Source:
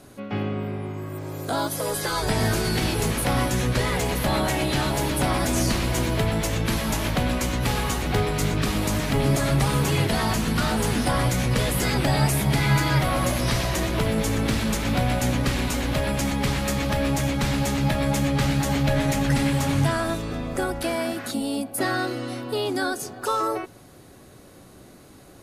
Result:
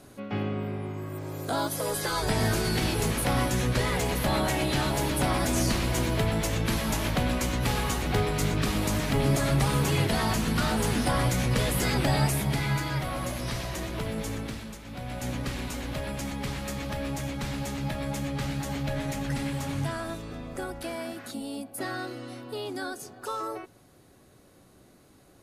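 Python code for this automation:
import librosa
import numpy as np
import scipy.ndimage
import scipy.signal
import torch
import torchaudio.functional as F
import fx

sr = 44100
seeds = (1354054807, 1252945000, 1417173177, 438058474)

y = fx.gain(x, sr, db=fx.line((12.14, -3.0), (12.91, -9.0), (14.33, -9.0), (14.83, -19.0), (15.29, -9.0)))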